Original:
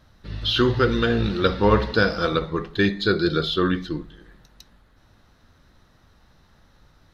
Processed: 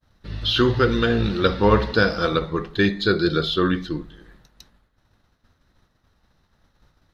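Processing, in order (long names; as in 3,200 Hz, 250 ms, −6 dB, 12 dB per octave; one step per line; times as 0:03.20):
downward expander −48 dBFS
level +1 dB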